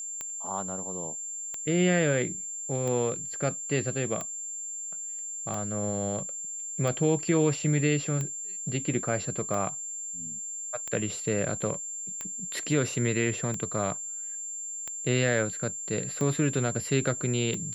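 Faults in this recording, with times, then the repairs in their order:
scratch tick 45 rpm −20 dBFS
whistle 7,300 Hz −34 dBFS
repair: click removal
notch filter 7,300 Hz, Q 30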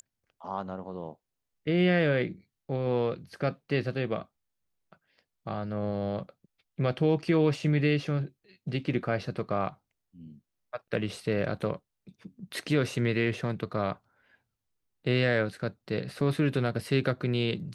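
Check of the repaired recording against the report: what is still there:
none of them is left

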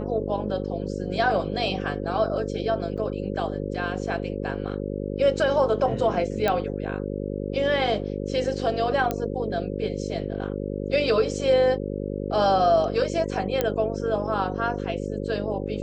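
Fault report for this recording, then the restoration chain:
mains buzz 50 Hz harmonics 11 −30 dBFS
0:02.97–0:02.98: drop-out 6.7 ms
0:06.48: click −10 dBFS
0:09.11: click −12 dBFS
0:13.61: click −9 dBFS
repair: click removal
hum removal 50 Hz, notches 11
repair the gap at 0:02.97, 6.7 ms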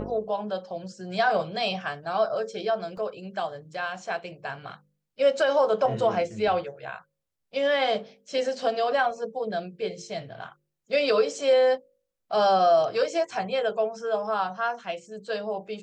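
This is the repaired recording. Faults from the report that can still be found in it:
none of them is left

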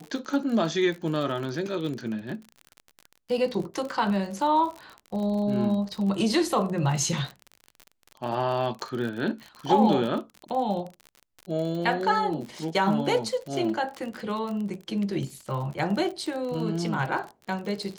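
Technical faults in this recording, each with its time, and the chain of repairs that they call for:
surface crackle 45 per second −32 dBFS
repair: click removal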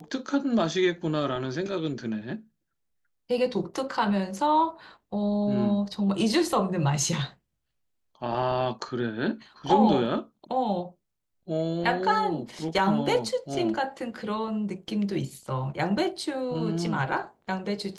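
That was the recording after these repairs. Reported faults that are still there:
none of them is left

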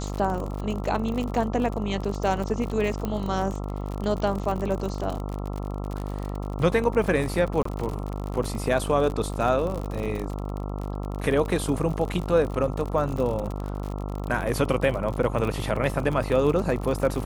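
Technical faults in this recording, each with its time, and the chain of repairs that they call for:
mains buzz 50 Hz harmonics 27 −31 dBFS
surface crackle 51 per second −29 dBFS
0:03.05: click −16 dBFS
0:07.63–0:07.65: drop-out 24 ms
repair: click removal
hum removal 50 Hz, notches 27
repair the gap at 0:07.63, 24 ms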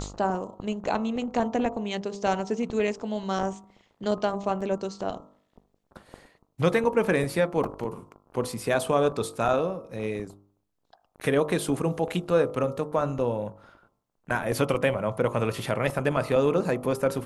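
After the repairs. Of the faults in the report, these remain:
none of them is left

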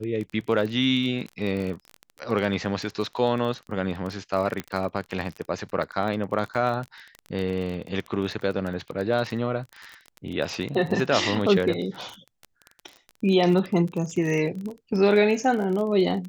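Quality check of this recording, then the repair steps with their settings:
surface crackle 27 per second −29 dBFS
0:04.60: click −15 dBFS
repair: click removal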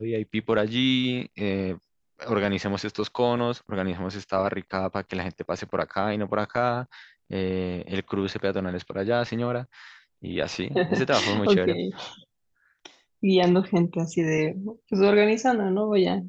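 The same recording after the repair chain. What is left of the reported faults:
none of them is left

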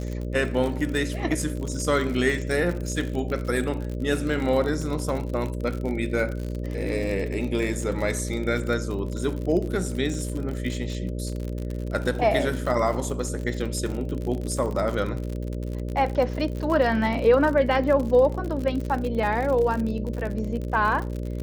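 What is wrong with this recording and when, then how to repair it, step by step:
mains buzz 60 Hz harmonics 10 −30 dBFS
surface crackle 58 per second −29 dBFS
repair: click removal
hum removal 60 Hz, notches 10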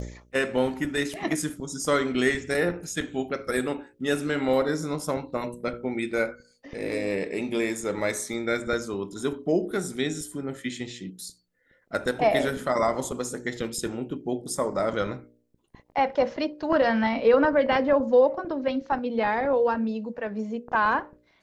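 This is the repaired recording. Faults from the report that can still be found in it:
none of them is left

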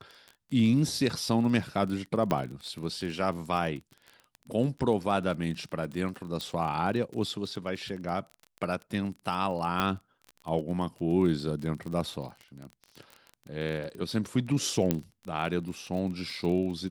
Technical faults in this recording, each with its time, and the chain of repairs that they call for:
surface crackle 27 per second −35 dBFS
0:02.31: click −14 dBFS
0:06.41: click −20 dBFS
0:09.80: click −13 dBFS
0:14.91: click −11 dBFS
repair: click removal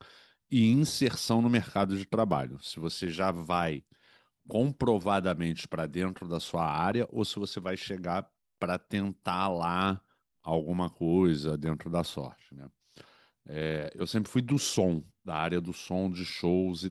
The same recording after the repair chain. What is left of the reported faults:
0:02.31: click

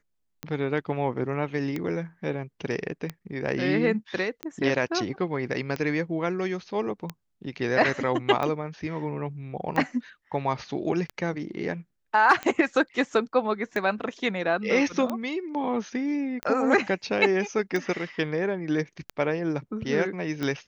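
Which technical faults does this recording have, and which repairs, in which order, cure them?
scratch tick 45 rpm −16 dBFS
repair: click removal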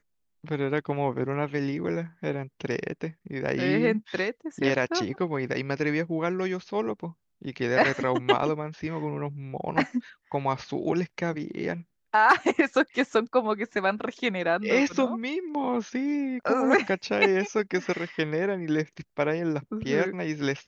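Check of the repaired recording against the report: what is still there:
none of them is left

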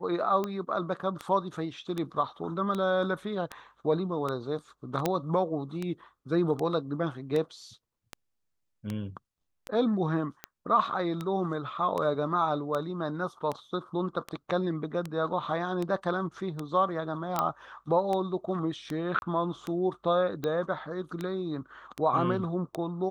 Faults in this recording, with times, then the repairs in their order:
scratch tick 78 rpm −19 dBFS
0:05.06: click −12 dBFS
0:17.39: click −12 dBFS
0:19.19–0:19.22: drop-out 31 ms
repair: click removal
repair the gap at 0:19.19, 31 ms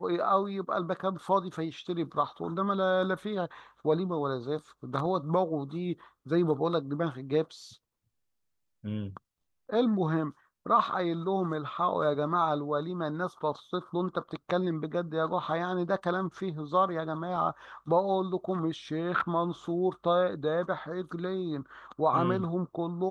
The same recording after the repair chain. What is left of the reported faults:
none of them is left

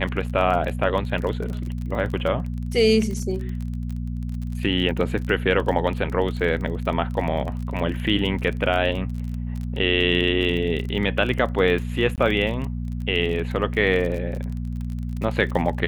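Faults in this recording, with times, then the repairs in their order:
surface crackle 30 per second −29 dBFS
mains hum 60 Hz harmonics 4 −28 dBFS
0:12.16–0:12.18: drop-out 18 ms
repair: click removal
hum removal 60 Hz, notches 4
repair the gap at 0:12.16, 18 ms

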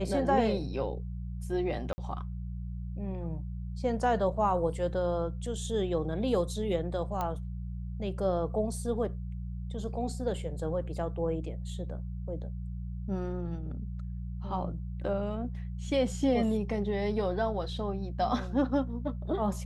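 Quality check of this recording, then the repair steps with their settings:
mains hum 60 Hz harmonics 3 −37 dBFS
0:01.93–0:01.98: drop-out 50 ms
0:07.21: click −19 dBFS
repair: click removal
hum removal 60 Hz, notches 3
repair the gap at 0:01.93, 50 ms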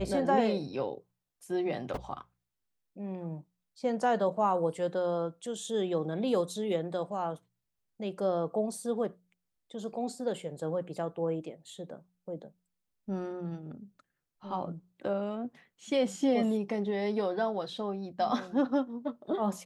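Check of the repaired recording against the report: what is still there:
none of them is left

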